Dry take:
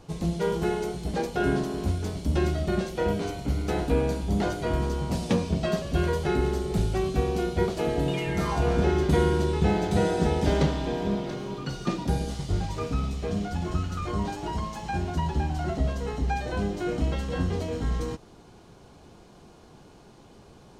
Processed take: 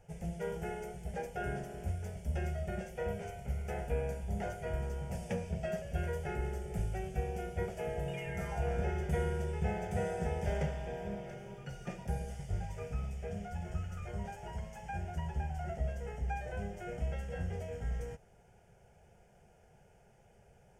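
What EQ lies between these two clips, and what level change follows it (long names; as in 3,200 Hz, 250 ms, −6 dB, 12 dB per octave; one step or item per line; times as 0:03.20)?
phaser with its sweep stopped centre 1,100 Hz, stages 6
−8.0 dB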